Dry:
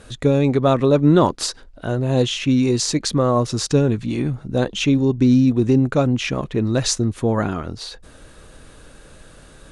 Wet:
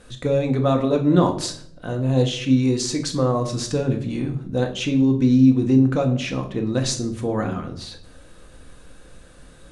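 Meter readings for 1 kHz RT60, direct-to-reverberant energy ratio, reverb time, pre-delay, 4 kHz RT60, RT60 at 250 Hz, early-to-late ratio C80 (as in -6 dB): 0.55 s, 3.5 dB, 0.65 s, 4 ms, 0.45 s, 0.75 s, 15.0 dB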